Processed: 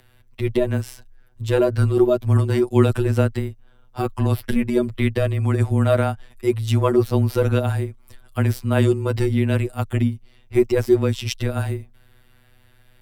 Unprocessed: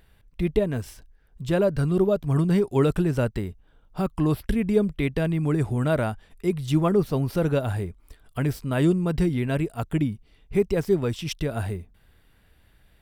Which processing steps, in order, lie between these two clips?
phases set to zero 128 Hz
frequency shifter −17 Hz
level +7 dB

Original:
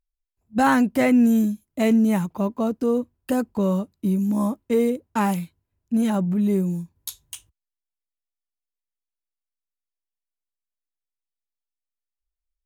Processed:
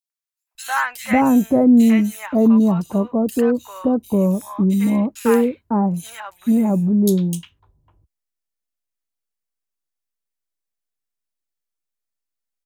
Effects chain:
three-band delay without the direct sound highs, mids, lows 100/550 ms, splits 950/3,100 Hz
level +5 dB

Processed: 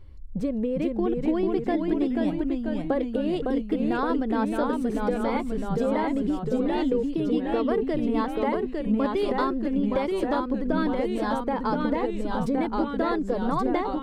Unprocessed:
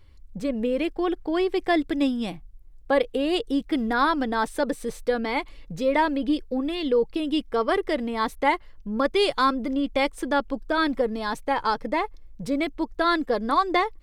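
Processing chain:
tilt shelving filter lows +6.5 dB, about 1,100 Hz
downward compressor, threshold −24 dBFS, peak gain reduction 11.5 dB
delay with pitch and tempo change per echo 385 ms, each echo −1 semitone, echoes 3

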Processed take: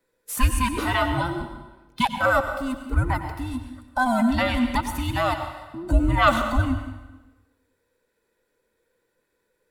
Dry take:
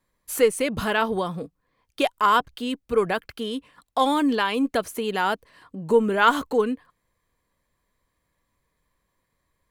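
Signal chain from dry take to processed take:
frequency inversion band by band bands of 500 Hz
0:02.18–0:04.26: parametric band 3,300 Hz −12.5 dB 1 octave
dense smooth reverb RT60 1.1 s, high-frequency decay 0.9×, pre-delay 80 ms, DRR 7.5 dB

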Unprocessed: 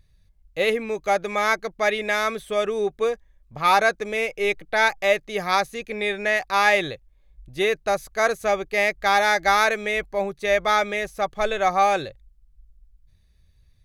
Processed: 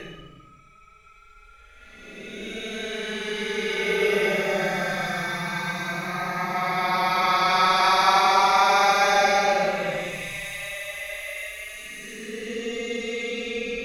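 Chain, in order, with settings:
sound drawn into the spectrogram rise, 0:02.64–0:03.48, 820–3,000 Hz −23 dBFS
delay with a high-pass on its return 569 ms, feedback 52%, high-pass 1,400 Hz, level −11 dB
extreme stretch with random phases 22×, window 0.05 s, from 0:05.18

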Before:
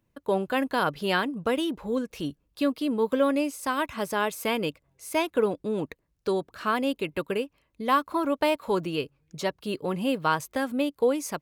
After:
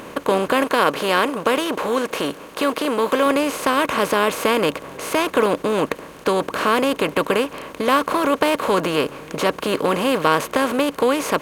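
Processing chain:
compressor on every frequency bin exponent 0.4
0:00.64–0:03.26: low-shelf EQ 160 Hz −9.5 dB
level +2 dB

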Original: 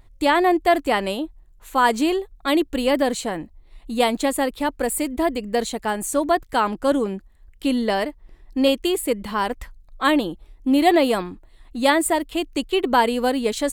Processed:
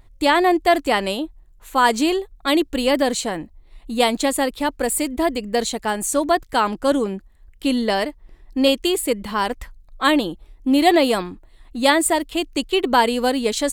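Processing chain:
dynamic equaliser 5,500 Hz, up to +5 dB, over −40 dBFS, Q 0.7
level +1 dB

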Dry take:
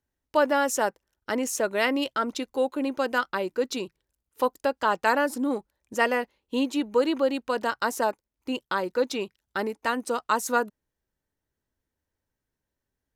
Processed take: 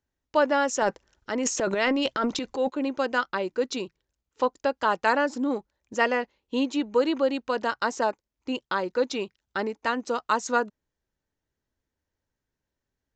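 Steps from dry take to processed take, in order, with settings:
0:00.82–0:02.70: transient designer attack −3 dB, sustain +12 dB
downsampling to 16,000 Hz

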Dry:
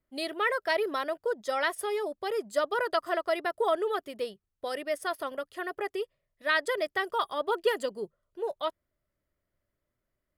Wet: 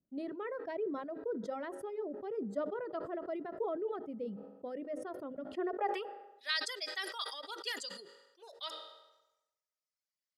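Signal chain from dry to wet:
band-pass filter sweep 210 Hz → 5,100 Hz, 0:05.43–0:06.48
hum removal 51.98 Hz, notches 9
on a send at −16 dB: convolution reverb RT60 2.3 s, pre-delay 3 ms
on the sum: reverb reduction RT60 1.4 s
level that may fall only so fast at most 61 dB per second
level +6 dB

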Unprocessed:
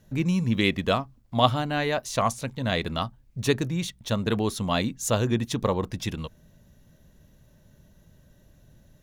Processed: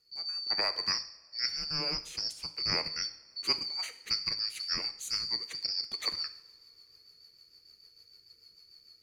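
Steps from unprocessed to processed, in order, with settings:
band-splitting scrambler in four parts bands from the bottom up 2341
speech leveller 0.5 s
rotating-speaker cabinet horn 1 Hz, later 6.7 Hz, at 0:02.64
coupled-rooms reverb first 0.61 s, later 3.3 s, from −21 dB, DRR 9.5 dB
0:00.50–0:00.98: multiband upward and downward compressor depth 100%
level −7 dB

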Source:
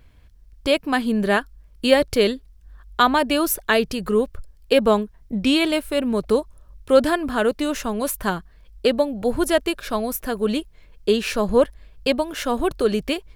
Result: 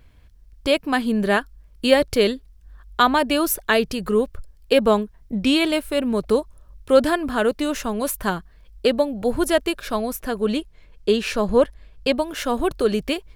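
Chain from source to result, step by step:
0:10.01–0:12.13: high-shelf EQ 12,000 Hz −8.5 dB

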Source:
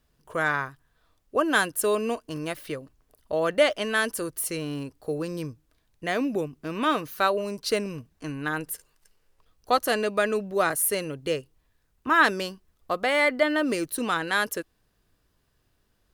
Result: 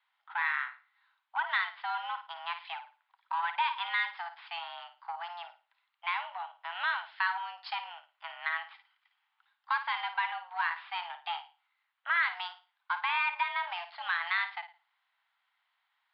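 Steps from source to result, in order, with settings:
downward compressor 2.5 to 1, threshold −28 dBFS, peak gain reduction 10 dB
flutter between parallel walls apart 9.5 metres, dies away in 0.33 s
harmonic generator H 4 −25 dB, 6 −27 dB, 8 −25 dB, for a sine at −15 dBFS
single-sideband voice off tune +350 Hz 550–3,400 Hz
MP3 40 kbit/s 12,000 Hz

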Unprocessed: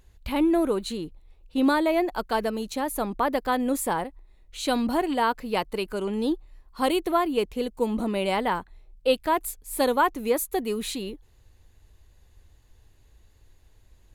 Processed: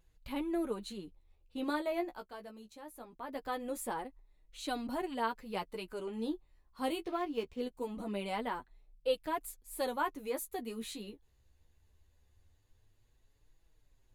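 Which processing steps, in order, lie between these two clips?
0:01.98–0:03.52: duck −10 dB, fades 0.33 s
flanger 0.22 Hz, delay 5.9 ms, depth 9.8 ms, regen +14%
0:07.04–0:07.61: linearly interpolated sample-rate reduction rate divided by 3×
level −8.5 dB

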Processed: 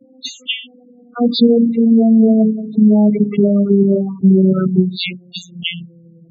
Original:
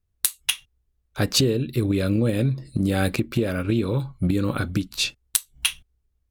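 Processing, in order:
vocoder with a gliding carrier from C4, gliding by −8 semitones
spectral peaks only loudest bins 8
envelope flattener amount 50%
level +8.5 dB

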